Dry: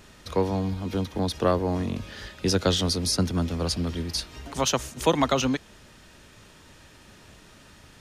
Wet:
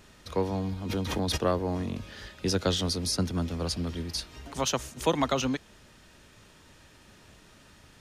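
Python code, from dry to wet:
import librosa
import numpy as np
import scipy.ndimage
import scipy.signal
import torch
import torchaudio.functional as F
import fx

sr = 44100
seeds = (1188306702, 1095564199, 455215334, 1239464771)

y = fx.pre_swell(x, sr, db_per_s=34.0, at=(0.88, 1.36), fade=0.02)
y = F.gain(torch.from_numpy(y), -4.0).numpy()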